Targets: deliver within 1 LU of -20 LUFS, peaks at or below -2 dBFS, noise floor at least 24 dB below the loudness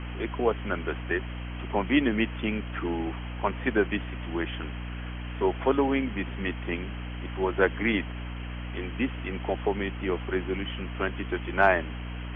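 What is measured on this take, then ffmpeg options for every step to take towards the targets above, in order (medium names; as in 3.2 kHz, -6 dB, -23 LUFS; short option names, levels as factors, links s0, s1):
hum 60 Hz; highest harmonic 300 Hz; hum level -33 dBFS; noise floor -36 dBFS; noise floor target -54 dBFS; loudness -29.5 LUFS; peak level -7.5 dBFS; loudness target -20.0 LUFS
-> -af "bandreject=f=60:t=h:w=6,bandreject=f=120:t=h:w=6,bandreject=f=180:t=h:w=6,bandreject=f=240:t=h:w=6,bandreject=f=300:t=h:w=6"
-af "afftdn=nr=18:nf=-36"
-af "volume=2.99,alimiter=limit=0.794:level=0:latency=1"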